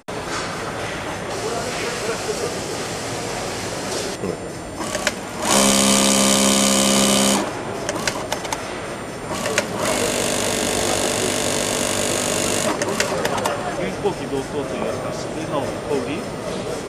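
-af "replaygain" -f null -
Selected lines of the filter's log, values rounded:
track_gain = +0.0 dB
track_peak = 0.577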